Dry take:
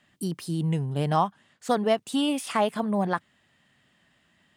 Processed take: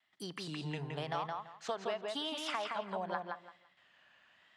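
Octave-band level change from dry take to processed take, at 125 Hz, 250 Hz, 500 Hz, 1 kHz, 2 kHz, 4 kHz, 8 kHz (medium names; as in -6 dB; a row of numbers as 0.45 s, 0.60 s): -16.0 dB, -17.5 dB, -12.0 dB, -11.0 dB, -6.5 dB, -5.5 dB, -12.5 dB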